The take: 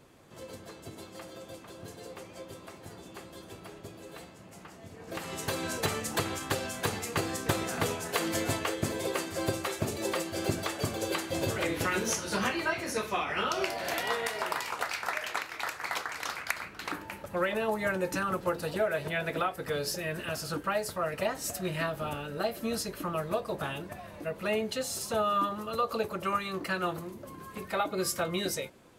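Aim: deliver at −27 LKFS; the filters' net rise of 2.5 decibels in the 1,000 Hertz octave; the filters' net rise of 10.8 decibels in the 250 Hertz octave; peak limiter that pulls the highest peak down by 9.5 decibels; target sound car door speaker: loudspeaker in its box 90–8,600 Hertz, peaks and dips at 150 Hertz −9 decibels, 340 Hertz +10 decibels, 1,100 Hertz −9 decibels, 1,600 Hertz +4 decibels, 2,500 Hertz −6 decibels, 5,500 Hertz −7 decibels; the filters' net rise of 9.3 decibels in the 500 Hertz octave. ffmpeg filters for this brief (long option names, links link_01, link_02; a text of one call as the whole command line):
ffmpeg -i in.wav -af "equalizer=frequency=250:width_type=o:gain=3.5,equalizer=frequency=500:width_type=o:gain=7,equalizer=frequency=1000:width_type=o:gain=5,alimiter=limit=-18.5dB:level=0:latency=1,highpass=90,equalizer=frequency=150:width_type=q:width=4:gain=-9,equalizer=frequency=340:width_type=q:width=4:gain=10,equalizer=frequency=1100:width_type=q:width=4:gain=-9,equalizer=frequency=1600:width_type=q:width=4:gain=4,equalizer=frequency=2500:width_type=q:width=4:gain=-6,equalizer=frequency=5500:width_type=q:width=4:gain=-7,lowpass=frequency=8600:width=0.5412,lowpass=frequency=8600:width=1.3066,volume=1dB" out.wav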